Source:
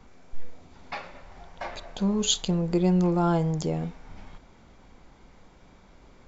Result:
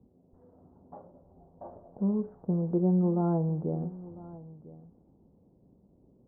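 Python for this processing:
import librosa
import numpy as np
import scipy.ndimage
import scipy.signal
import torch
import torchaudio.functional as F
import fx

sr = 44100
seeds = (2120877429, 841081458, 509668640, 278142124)

y = scipy.ndimage.gaussian_filter1d(x, 10.0, mode='constant')
y = fx.env_lowpass(y, sr, base_hz=370.0, full_db=-24.0)
y = scipy.signal.sosfilt(scipy.signal.butter(2, 100.0, 'highpass', fs=sr, output='sos'), y)
y = y + 10.0 ** (-18.5 / 20.0) * np.pad(y, (int(1000 * sr / 1000.0), 0))[:len(y)]
y = fx.end_taper(y, sr, db_per_s=310.0)
y = y * librosa.db_to_amplitude(-2.0)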